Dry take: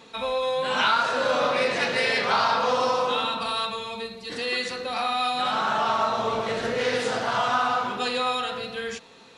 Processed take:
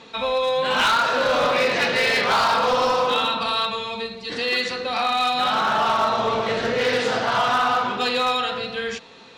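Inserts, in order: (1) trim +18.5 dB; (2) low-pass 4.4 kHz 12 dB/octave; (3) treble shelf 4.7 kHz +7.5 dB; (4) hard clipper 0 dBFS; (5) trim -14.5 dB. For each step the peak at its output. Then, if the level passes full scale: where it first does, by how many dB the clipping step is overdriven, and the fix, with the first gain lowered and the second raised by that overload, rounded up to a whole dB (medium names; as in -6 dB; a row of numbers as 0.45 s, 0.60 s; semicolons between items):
+7.5 dBFS, +7.0 dBFS, +8.5 dBFS, 0.0 dBFS, -14.5 dBFS; step 1, 8.5 dB; step 1 +9.5 dB, step 5 -5.5 dB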